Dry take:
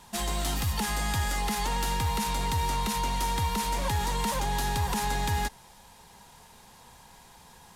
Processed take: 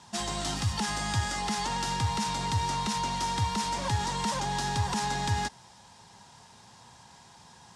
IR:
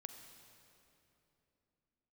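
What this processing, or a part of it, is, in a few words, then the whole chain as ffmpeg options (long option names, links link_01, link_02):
car door speaker: -af "highpass=94,equalizer=frequency=110:width_type=q:width=4:gain=8,equalizer=frequency=470:width_type=q:width=4:gain=-5,equalizer=frequency=5300:width_type=q:width=4:gain=4,lowpass=frequency=8600:width=0.5412,lowpass=frequency=8600:width=1.3066,equalizer=frequency=2300:width_type=o:width=0.46:gain=-3"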